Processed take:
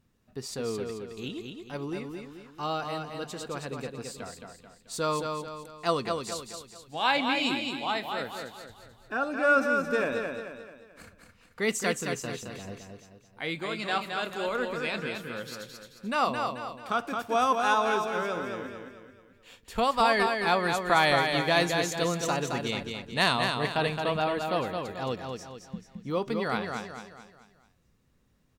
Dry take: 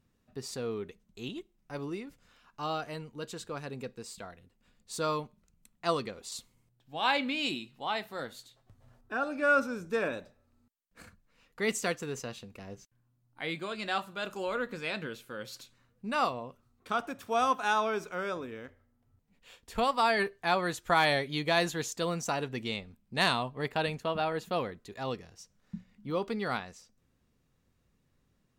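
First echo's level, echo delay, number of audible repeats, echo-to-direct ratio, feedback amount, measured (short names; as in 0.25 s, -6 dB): -5.0 dB, 0.218 s, 5, -4.0 dB, 43%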